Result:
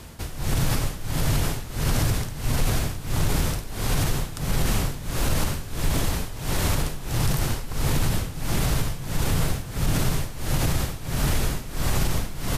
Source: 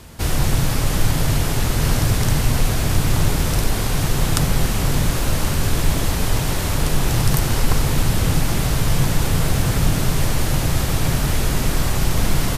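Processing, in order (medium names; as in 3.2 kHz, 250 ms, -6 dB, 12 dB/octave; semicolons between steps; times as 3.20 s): tremolo 1.5 Hz, depth 87%; peak limiter -13 dBFS, peak gain reduction 11 dB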